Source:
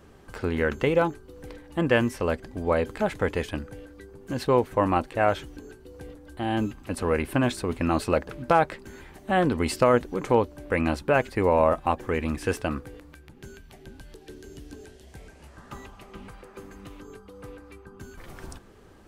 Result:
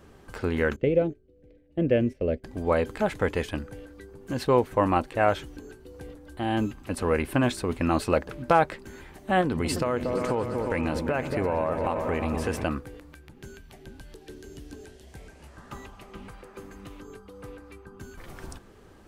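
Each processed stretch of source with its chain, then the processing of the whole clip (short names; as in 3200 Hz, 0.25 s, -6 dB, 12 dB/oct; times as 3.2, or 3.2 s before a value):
0.76–2.44 gate -36 dBFS, range -13 dB + EQ curve 620 Hz 0 dB, 950 Hz -24 dB, 2300 Hz -7 dB, 9800 Hz -22 dB
9.41–12.64 repeats that get brighter 0.117 s, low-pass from 200 Hz, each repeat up 2 oct, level -6 dB + compressor 5:1, threshold -22 dBFS
whole clip: dry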